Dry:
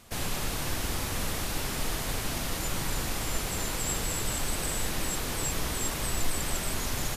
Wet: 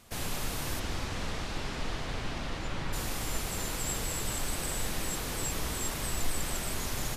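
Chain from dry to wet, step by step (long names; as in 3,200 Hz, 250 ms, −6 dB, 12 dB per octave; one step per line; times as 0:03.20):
0:00.79–0:02.92: low-pass filter 6,000 Hz → 3,500 Hz 12 dB per octave
delay that swaps between a low-pass and a high-pass 133 ms, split 1,600 Hz, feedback 52%, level −11 dB
level −3 dB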